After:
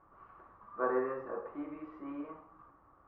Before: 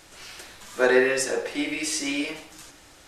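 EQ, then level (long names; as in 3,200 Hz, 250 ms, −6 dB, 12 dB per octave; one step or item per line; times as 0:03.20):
high-pass filter 60 Hz 6 dB per octave
transistor ladder low-pass 1,200 Hz, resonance 85%
spectral tilt −2 dB per octave
−3.5 dB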